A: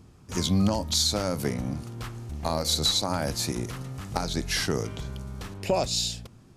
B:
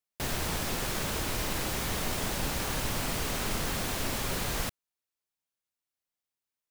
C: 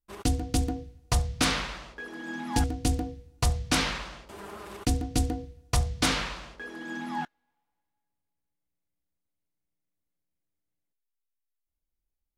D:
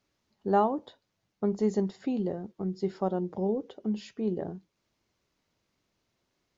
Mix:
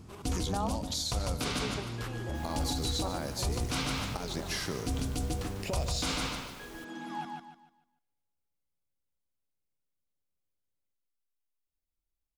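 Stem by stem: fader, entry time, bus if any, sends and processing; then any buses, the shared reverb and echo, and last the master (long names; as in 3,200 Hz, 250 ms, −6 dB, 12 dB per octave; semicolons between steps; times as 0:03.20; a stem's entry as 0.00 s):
+1.5 dB, 0.00 s, no send, echo send −12 dB, downward compressor 3 to 1, threshold −37 dBFS, peak gain reduction 13.5 dB
−19.5 dB, 2.15 s, no send, no echo send, no processing
−5.0 dB, 0.00 s, no send, echo send −4 dB, parametric band 1,800 Hz −9.5 dB 0.21 octaves
−1.5 dB, 0.00 s, no send, no echo send, high-pass filter 780 Hz 12 dB per octave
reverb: not used
echo: repeating echo 148 ms, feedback 33%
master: brickwall limiter −22 dBFS, peak gain reduction 8 dB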